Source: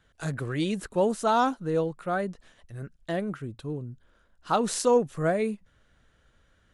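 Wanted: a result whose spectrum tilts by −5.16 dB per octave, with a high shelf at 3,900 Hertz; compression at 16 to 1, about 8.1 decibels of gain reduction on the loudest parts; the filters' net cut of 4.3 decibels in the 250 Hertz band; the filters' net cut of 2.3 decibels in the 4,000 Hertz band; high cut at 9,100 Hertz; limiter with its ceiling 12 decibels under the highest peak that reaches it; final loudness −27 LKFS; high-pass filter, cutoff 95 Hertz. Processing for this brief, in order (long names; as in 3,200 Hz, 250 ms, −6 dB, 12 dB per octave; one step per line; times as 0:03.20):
high-pass filter 95 Hz
low-pass filter 9,100 Hz
parametric band 250 Hz −5.5 dB
high-shelf EQ 3,900 Hz +4.5 dB
parametric band 4,000 Hz −5.5 dB
downward compressor 16 to 1, threshold −26 dBFS
level +10 dB
brickwall limiter −16.5 dBFS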